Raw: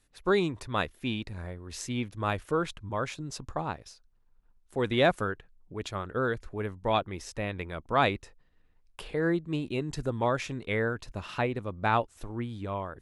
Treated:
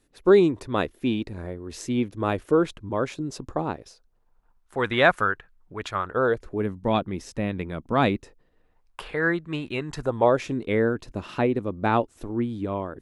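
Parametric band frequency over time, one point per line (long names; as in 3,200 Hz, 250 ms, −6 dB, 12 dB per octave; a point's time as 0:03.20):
parametric band +11 dB 1.8 octaves
0:03.75 340 Hz
0:04.81 1,400 Hz
0:05.97 1,400 Hz
0:06.69 220 Hz
0:08.10 220 Hz
0:09.18 1,600 Hz
0:09.85 1,600 Hz
0:10.45 300 Hz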